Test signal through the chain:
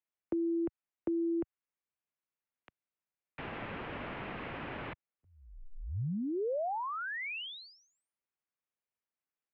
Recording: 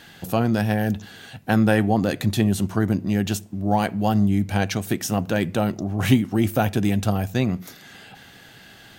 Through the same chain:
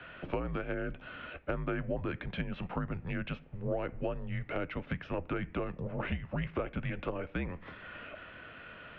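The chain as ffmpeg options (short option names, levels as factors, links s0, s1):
-filter_complex "[0:a]highpass=f=260:t=q:w=0.5412,highpass=f=260:t=q:w=1.307,lowpass=f=2900:t=q:w=0.5176,lowpass=f=2900:t=q:w=0.7071,lowpass=f=2900:t=q:w=1.932,afreqshift=-180,acrossover=split=120|560[s0][s1][s2];[s0]acompressor=threshold=0.00794:ratio=4[s3];[s1]acompressor=threshold=0.0141:ratio=4[s4];[s2]acompressor=threshold=0.01:ratio=4[s5];[s3][s4][s5]amix=inputs=3:normalize=0"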